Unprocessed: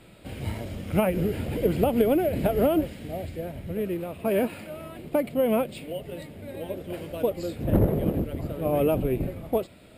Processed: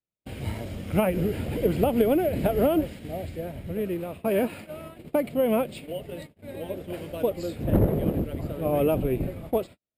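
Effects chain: gate -39 dBFS, range -46 dB

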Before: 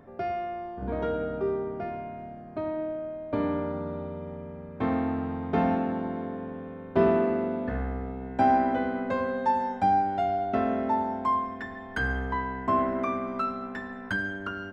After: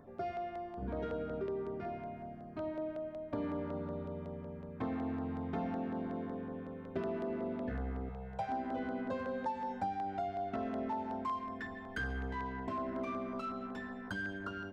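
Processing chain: 8.09–8.49 s: elliptic band-stop 190–450 Hz; compression 6:1, threshold -27 dBFS, peak gain reduction 10 dB; in parallel at -6 dB: saturation -34.5 dBFS, distortion -9 dB; on the sum: LFO notch saw down 5.4 Hz 440–3200 Hz; trim -7.5 dB

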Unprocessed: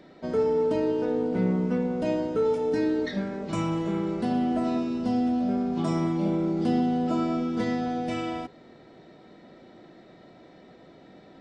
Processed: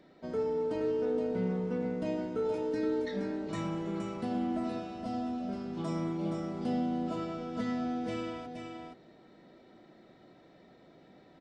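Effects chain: delay 471 ms -5 dB; trim -8 dB

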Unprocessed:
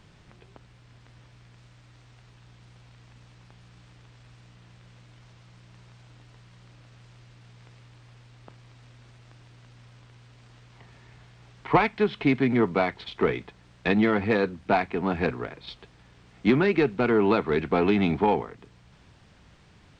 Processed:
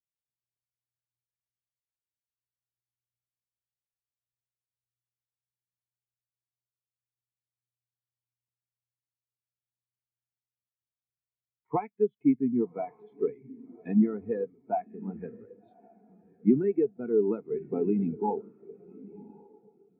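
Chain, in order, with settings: echo that smears into a reverb 1135 ms, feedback 48%, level -7 dB; spectral contrast expander 2.5:1; trim -4.5 dB

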